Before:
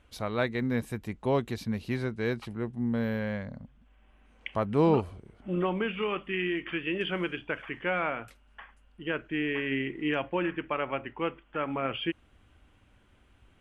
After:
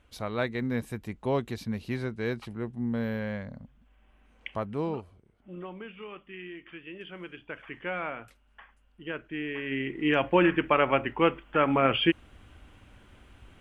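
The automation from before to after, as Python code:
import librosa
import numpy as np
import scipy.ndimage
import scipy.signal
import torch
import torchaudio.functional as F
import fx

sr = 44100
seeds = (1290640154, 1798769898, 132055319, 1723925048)

y = fx.gain(x, sr, db=fx.line((4.48, -1.0), (5.04, -12.0), (7.13, -12.0), (7.73, -4.0), (9.57, -4.0), (10.36, 8.0)))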